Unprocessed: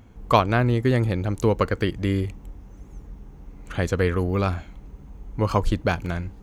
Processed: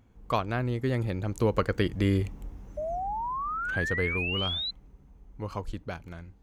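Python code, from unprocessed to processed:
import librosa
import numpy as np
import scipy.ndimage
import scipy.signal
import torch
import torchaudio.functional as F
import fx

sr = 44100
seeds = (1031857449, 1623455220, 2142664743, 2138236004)

y = fx.doppler_pass(x, sr, speed_mps=6, closest_m=4.6, pass_at_s=2.38)
y = fx.spec_paint(y, sr, seeds[0], shape='rise', start_s=2.77, length_s=1.94, low_hz=590.0, high_hz=4100.0, level_db=-31.0)
y = y * 10.0 ** (-1.0 / 20.0)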